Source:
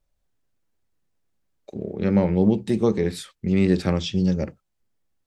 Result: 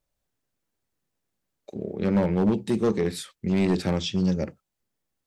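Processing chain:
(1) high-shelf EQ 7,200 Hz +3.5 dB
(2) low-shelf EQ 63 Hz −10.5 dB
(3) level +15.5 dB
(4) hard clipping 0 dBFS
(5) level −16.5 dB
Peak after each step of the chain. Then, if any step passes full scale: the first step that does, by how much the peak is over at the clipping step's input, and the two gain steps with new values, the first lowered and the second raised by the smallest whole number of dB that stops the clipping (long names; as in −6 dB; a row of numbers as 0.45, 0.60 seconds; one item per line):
−7.0, −7.0, +8.5, 0.0, −16.5 dBFS
step 3, 8.5 dB
step 3 +6.5 dB, step 5 −7.5 dB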